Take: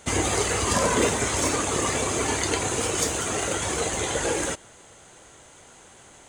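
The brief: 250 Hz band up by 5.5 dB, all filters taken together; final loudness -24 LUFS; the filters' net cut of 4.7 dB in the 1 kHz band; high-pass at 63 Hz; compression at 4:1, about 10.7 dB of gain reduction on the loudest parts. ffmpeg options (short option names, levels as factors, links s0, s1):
-af "highpass=63,equalizer=f=250:t=o:g=7.5,equalizer=f=1000:t=o:g=-6.5,acompressor=threshold=0.0398:ratio=4,volume=2"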